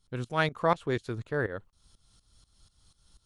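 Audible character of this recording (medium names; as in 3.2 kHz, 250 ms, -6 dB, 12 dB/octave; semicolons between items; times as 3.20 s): tremolo saw up 4.1 Hz, depth 85%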